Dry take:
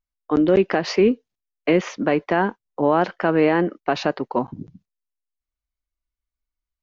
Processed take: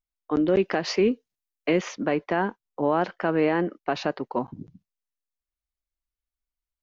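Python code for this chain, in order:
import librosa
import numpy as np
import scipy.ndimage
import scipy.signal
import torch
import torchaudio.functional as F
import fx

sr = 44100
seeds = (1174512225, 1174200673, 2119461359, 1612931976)

y = fx.high_shelf(x, sr, hz=4200.0, db=6.5, at=(0.58, 1.96))
y = y * librosa.db_to_amplitude(-5.0)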